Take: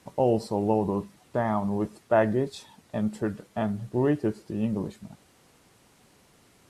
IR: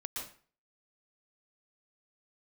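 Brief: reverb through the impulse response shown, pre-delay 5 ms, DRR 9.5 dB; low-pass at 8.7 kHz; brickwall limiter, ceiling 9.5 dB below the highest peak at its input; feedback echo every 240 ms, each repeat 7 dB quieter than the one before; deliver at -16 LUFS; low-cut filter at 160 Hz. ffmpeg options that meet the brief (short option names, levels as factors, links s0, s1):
-filter_complex "[0:a]highpass=160,lowpass=8700,alimiter=limit=0.119:level=0:latency=1,aecho=1:1:240|480|720|960|1200:0.447|0.201|0.0905|0.0407|0.0183,asplit=2[s0][s1];[1:a]atrim=start_sample=2205,adelay=5[s2];[s1][s2]afir=irnorm=-1:irlink=0,volume=0.316[s3];[s0][s3]amix=inputs=2:normalize=0,volume=4.73"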